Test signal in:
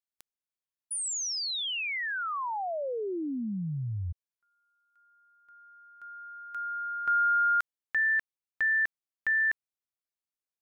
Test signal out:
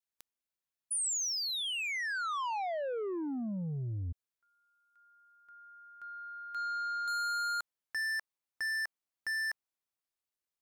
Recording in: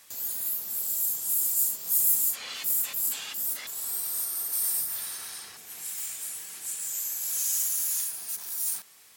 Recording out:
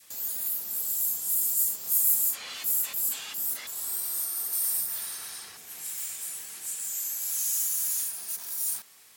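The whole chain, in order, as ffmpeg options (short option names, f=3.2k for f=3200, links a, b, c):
-filter_complex "[0:a]adynamicequalizer=threshold=0.00631:dfrequency=960:dqfactor=0.96:tfrequency=960:tqfactor=0.96:attack=5:release=100:ratio=0.375:range=2:mode=boostabove:tftype=bell,acrossover=split=7200[a][b];[a]asoftclip=type=tanh:threshold=-33dB[c];[c][b]amix=inputs=2:normalize=0"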